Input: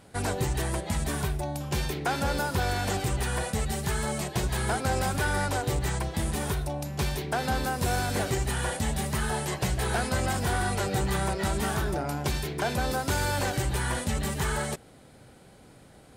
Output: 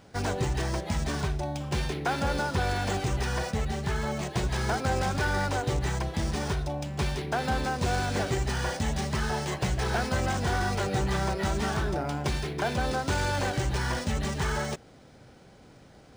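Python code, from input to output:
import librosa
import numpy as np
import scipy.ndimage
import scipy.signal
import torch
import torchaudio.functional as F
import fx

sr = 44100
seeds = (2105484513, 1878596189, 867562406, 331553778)

y = fx.air_absorb(x, sr, metres=57.0, at=(3.51, 4.23))
y = np.interp(np.arange(len(y)), np.arange(len(y))[::3], y[::3])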